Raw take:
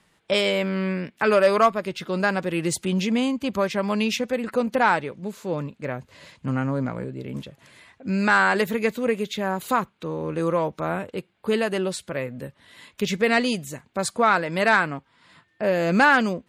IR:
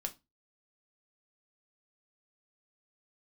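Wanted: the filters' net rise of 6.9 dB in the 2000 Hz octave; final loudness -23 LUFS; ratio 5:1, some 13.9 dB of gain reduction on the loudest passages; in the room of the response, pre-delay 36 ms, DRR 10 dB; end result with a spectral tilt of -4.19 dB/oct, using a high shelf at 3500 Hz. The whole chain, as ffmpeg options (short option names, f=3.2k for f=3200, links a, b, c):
-filter_complex "[0:a]equalizer=f=2k:t=o:g=8,highshelf=f=3.5k:g=5.5,acompressor=threshold=-24dB:ratio=5,asplit=2[a][b];[1:a]atrim=start_sample=2205,adelay=36[c];[b][c]afir=irnorm=-1:irlink=0,volume=-9.5dB[d];[a][d]amix=inputs=2:normalize=0,volume=5dB"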